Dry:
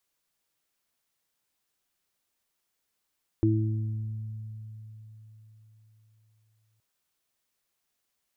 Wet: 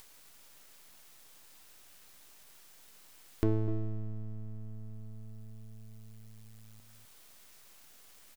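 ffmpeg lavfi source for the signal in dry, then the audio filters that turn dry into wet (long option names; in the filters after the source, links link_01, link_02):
-f lavfi -i "aevalsrc='0.0794*pow(10,-3*t/4.26)*sin(2*PI*109*t)+0.0251*pow(10,-3*t/2.59)*sin(2*PI*218*t)+0.1*pow(10,-3*t/0.94)*sin(2*PI*327*t)':duration=3.37:sample_rate=44100"
-filter_complex "[0:a]aeval=exprs='max(val(0),0)':channel_layout=same,asplit=2[link_01][link_02];[link_02]adelay=250.7,volume=-11dB,highshelf=frequency=4000:gain=-5.64[link_03];[link_01][link_03]amix=inputs=2:normalize=0,acompressor=mode=upward:threshold=-34dB:ratio=2.5"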